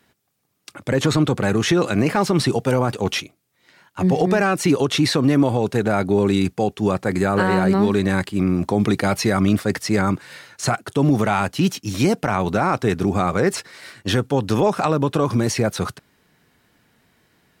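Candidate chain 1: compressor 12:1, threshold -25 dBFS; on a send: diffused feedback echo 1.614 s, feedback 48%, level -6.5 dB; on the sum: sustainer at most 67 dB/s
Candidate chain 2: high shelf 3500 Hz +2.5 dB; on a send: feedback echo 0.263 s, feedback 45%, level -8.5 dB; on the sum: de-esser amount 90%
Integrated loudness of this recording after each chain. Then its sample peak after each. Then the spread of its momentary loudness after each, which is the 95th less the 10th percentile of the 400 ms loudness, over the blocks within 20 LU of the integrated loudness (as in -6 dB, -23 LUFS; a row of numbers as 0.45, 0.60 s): -29.5, -20.5 LUFS; -12.5, -4.5 dBFS; 8, 9 LU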